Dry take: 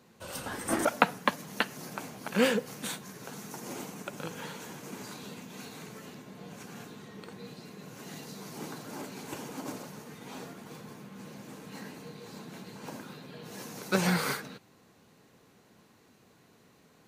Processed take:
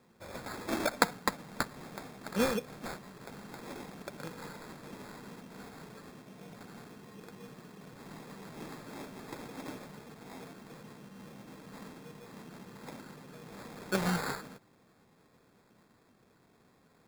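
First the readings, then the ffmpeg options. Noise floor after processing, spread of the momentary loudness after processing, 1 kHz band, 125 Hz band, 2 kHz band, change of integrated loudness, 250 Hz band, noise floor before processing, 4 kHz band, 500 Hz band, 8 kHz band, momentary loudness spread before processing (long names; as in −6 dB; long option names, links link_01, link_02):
−66 dBFS, 19 LU, −3.5 dB, −3.5 dB, −4.5 dB, −4.0 dB, −4.0 dB, −62 dBFS, −4.5 dB, −4.0 dB, −5.5 dB, 19 LU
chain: -af "acrusher=samples=15:mix=1:aa=0.000001,volume=-4dB"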